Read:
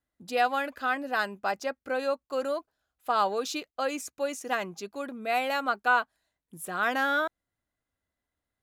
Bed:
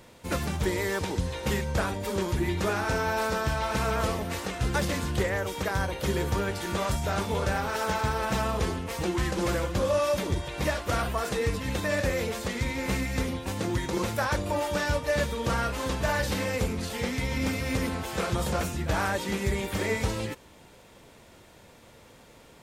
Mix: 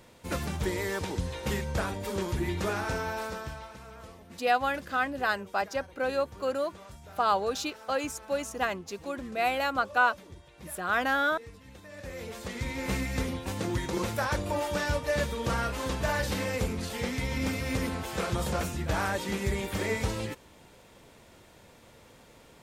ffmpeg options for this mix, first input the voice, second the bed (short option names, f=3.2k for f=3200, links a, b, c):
-filter_complex "[0:a]adelay=4100,volume=0dB[a];[1:a]volume=15dB,afade=t=out:st=2.78:d=0.99:silence=0.141254,afade=t=in:st=11.93:d=1:silence=0.125893[b];[a][b]amix=inputs=2:normalize=0"